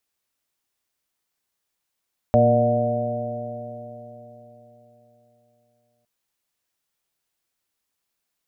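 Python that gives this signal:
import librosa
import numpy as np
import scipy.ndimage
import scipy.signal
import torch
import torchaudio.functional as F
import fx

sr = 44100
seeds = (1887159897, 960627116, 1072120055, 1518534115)

y = fx.additive_stiff(sr, length_s=3.71, hz=116.0, level_db=-19.0, upper_db=(-1, -14.5, -5.0, 5.0, -2.0), decay_s=3.91, stiffness=0.0027)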